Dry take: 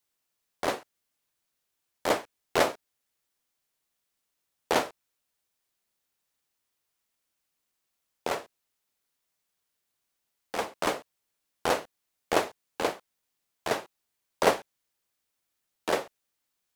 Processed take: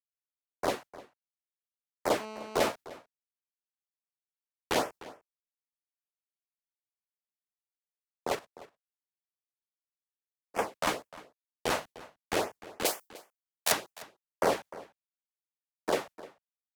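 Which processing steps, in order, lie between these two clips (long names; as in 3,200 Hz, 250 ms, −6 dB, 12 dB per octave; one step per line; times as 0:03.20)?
0:08.35–0:10.56: output level in coarse steps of 13 dB
downward expander −38 dBFS
auto-filter notch sine 2.1 Hz 340–4,100 Hz
brickwall limiter −17 dBFS, peak gain reduction 9 dB
0:12.85–0:13.72: RIAA equalisation recording
slap from a distant wall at 52 metres, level −14 dB
0:02.20–0:02.70: phone interference −42 dBFS
multiband upward and downward expander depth 40%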